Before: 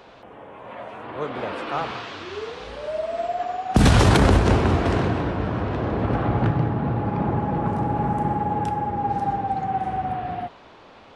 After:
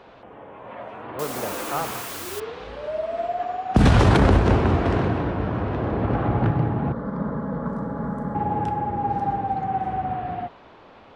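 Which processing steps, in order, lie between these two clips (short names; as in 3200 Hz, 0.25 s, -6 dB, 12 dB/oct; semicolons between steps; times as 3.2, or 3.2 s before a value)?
high shelf 4500 Hz -11.5 dB; 1.19–2.4 requantised 6-bit, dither triangular; 6.92–8.35 fixed phaser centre 520 Hz, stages 8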